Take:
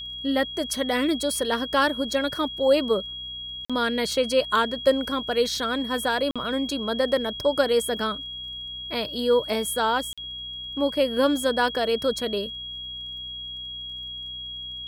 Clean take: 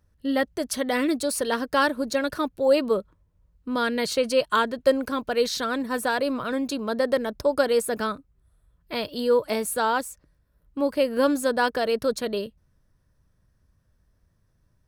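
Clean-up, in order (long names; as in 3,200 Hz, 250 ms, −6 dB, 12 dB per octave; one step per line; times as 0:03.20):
click removal
hum removal 62.7 Hz, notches 5
notch filter 3,300 Hz, Q 30
repair the gap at 0:03.65/0:06.31/0:10.13, 46 ms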